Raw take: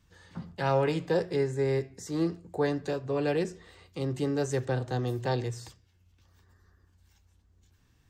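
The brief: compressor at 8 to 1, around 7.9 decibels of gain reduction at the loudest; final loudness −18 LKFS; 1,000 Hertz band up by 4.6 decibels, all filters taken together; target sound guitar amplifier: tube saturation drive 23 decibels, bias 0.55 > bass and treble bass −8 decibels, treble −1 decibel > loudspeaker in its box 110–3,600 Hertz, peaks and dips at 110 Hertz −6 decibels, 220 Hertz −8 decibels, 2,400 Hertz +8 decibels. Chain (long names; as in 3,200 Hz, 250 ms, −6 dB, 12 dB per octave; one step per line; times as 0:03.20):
parametric band 1,000 Hz +6 dB
downward compressor 8 to 1, threshold −28 dBFS
tube saturation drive 23 dB, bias 0.55
bass and treble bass −8 dB, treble −1 dB
loudspeaker in its box 110–3,600 Hz, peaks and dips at 110 Hz −6 dB, 220 Hz −8 dB, 2,400 Hz +8 dB
level +21 dB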